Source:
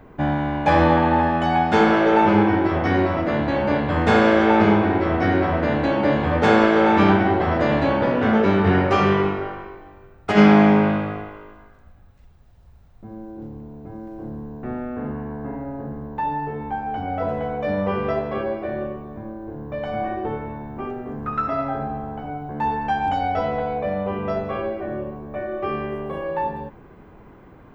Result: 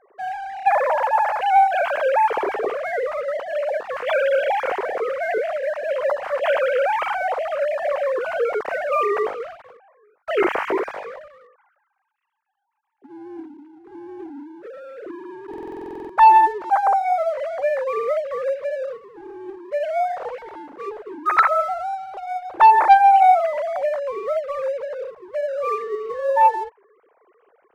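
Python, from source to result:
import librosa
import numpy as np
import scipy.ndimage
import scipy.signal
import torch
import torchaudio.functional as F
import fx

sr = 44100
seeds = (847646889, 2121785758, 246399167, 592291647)

y = fx.sine_speech(x, sr)
y = fx.leveller(y, sr, passes=1)
y = fx.buffer_glitch(y, sr, at_s=(15.49,), block=2048, repeats=12)
y = F.gain(torch.from_numpy(y), -3.5).numpy()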